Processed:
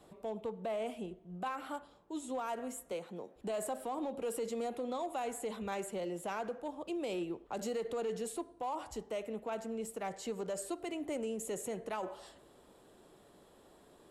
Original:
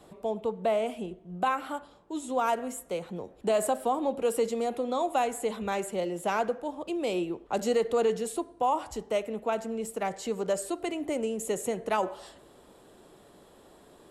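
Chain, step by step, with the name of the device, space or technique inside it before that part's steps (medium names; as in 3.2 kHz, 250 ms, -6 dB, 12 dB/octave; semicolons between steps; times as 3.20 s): limiter into clipper (peak limiter -23.5 dBFS, peak gain reduction 6.5 dB; hard clipper -25 dBFS, distortion -28 dB); 2.92–3.36 s: high-pass 200 Hz 12 dB/octave; trim -6 dB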